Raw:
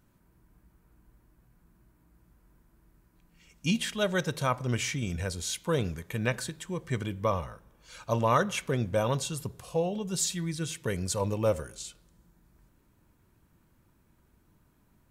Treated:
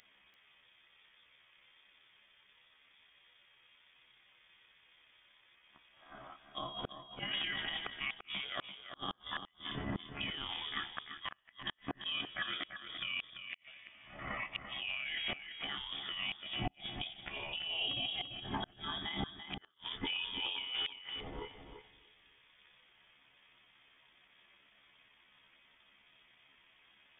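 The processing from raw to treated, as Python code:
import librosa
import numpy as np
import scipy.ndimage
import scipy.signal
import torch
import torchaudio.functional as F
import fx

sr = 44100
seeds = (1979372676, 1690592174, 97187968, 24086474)

p1 = fx.stretch_grains(x, sr, factor=1.8, grain_ms=60.0)
p2 = fx.over_compress(p1, sr, threshold_db=-36.0, ratio=-1.0)
p3 = fx.highpass(p2, sr, hz=1200.0, slope=6)
p4 = fx.echo_feedback(p3, sr, ms=295, feedback_pct=40, wet_db=-20.5)
p5 = fx.freq_invert(p4, sr, carrier_hz=3500)
p6 = fx.gate_flip(p5, sr, shuts_db=-33.0, range_db=-39)
p7 = p6 + fx.echo_single(p6, sr, ms=340, db=-9.0, dry=0)
y = p7 * librosa.db_to_amplitude(8.0)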